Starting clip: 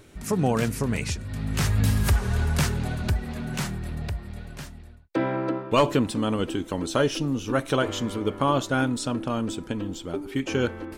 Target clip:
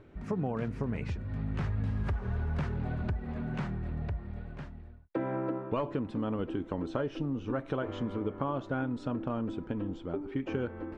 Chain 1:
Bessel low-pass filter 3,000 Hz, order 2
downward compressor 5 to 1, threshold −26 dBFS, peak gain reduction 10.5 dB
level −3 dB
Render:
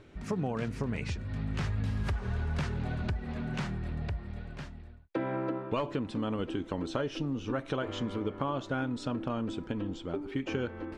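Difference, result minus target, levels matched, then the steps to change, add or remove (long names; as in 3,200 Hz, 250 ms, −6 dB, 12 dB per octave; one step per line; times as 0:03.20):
4,000 Hz band +8.0 dB
change: Bessel low-pass filter 1,400 Hz, order 2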